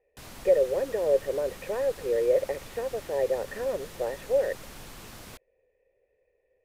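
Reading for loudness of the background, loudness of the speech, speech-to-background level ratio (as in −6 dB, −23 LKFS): −45.0 LKFS, −28.0 LKFS, 17.0 dB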